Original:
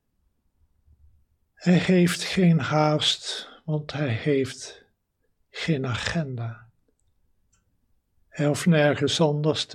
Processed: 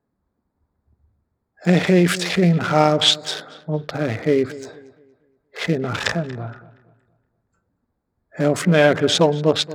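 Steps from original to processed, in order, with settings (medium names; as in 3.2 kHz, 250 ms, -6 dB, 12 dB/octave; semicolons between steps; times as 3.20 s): local Wiener filter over 15 samples; high-pass 260 Hz 6 dB/octave; filtered feedback delay 234 ms, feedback 35%, low-pass 3.2 kHz, level -17.5 dB; trim +7.5 dB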